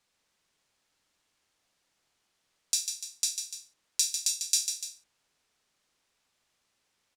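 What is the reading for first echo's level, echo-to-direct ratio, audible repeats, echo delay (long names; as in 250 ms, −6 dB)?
−7.0 dB, −6.0 dB, 2, 147 ms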